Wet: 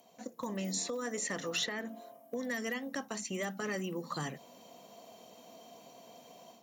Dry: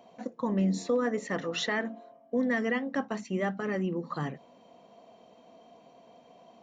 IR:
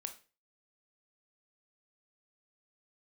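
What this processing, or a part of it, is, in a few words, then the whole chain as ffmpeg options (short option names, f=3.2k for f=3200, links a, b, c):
FM broadcast chain: -filter_complex "[0:a]highpass=41,dynaudnorm=f=250:g=3:m=8.5dB,acrossover=split=550|3400[a][b][c];[a]acompressor=threshold=-29dB:ratio=4[d];[b]acompressor=threshold=-30dB:ratio=4[e];[c]acompressor=threshold=-43dB:ratio=4[f];[d][e][f]amix=inputs=3:normalize=0,aemphasis=mode=production:type=50fm,alimiter=limit=-18.5dB:level=0:latency=1:release=395,asoftclip=type=hard:threshold=-20dB,lowpass=f=15k:w=0.5412,lowpass=f=15k:w=1.3066,aemphasis=mode=production:type=50fm,volume=-7.5dB"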